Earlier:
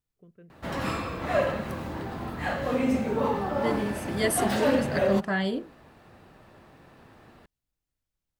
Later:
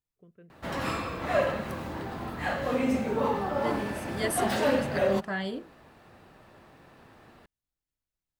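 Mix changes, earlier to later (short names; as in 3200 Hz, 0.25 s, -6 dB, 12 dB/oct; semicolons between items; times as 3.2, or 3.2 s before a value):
second voice -4.0 dB; master: add low shelf 340 Hz -3 dB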